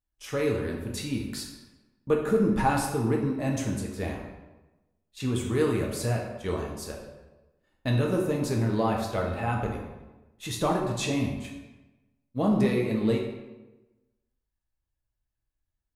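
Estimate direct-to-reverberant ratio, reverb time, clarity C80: -0.5 dB, 1.1 s, 6.5 dB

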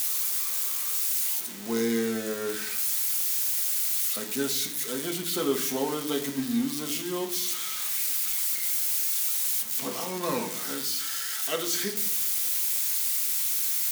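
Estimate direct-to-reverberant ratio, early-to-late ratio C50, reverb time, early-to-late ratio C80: 1.5 dB, 10.5 dB, 0.65 s, 13.0 dB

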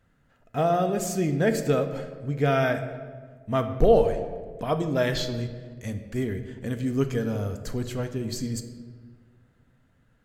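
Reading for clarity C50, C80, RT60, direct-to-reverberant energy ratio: 10.0 dB, 11.0 dB, 1.6 s, 7.5 dB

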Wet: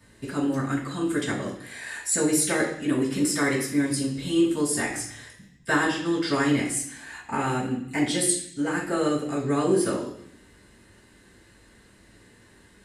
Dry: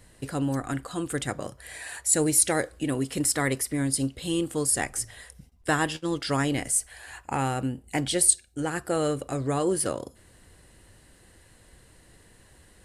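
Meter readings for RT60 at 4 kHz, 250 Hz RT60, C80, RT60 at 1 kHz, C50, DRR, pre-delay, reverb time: 0.85 s, 0.95 s, 9.0 dB, 0.70 s, 5.5 dB, -9.5 dB, 3 ms, 0.65 s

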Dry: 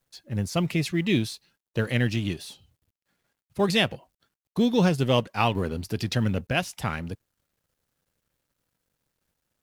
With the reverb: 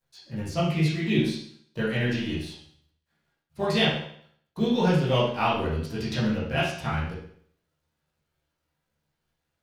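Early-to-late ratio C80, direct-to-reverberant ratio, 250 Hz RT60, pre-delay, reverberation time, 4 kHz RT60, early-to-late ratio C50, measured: 7.0 dB, -9.0 dB, 0.60 s, 13 ms, 0.60 s, 0.60 s, 2.0 dB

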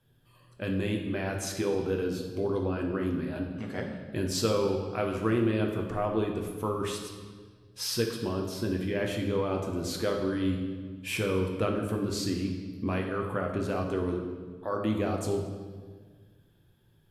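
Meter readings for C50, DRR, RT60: 4.5 dB, 1.0 dB, 1.6 s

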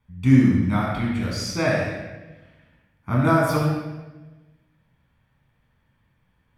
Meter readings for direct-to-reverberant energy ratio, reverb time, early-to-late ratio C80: -4.5 dB, 1.2 s, 2.0 dB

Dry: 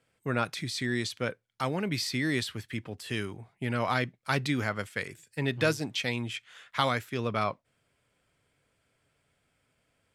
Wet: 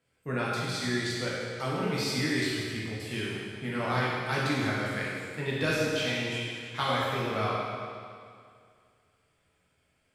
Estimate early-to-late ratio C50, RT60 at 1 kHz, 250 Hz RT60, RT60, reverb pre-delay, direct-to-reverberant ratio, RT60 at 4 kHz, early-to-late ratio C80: -2.5 dB, 2.2 s, 2.2 s, 2.2 s, 11 ms, -7.0 dB, 2.0 s, -0.5 dB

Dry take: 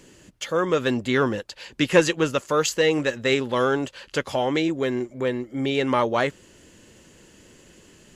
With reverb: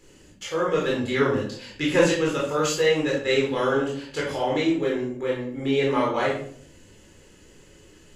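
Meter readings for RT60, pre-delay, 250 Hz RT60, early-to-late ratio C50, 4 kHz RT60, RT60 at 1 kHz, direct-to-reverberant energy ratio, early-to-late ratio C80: 0.55 s, 19 ms, 0.75 s, 4.0 dB, 0.40 s, 0.50 s, -4.5 dB, 8.5 dB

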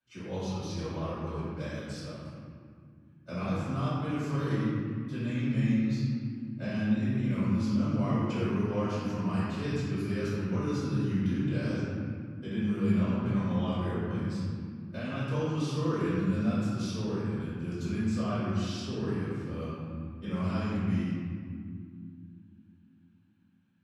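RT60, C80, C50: 2.3 s, -1.0 dB, -3.5 dB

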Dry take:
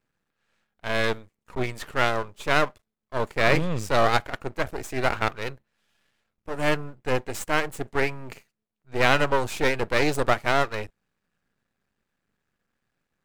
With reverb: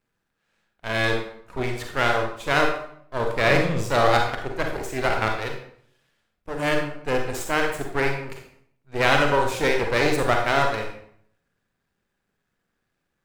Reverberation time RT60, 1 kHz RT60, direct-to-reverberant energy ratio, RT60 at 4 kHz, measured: 0.65 s, 0.65 s, 2.0 dB, 0.50 s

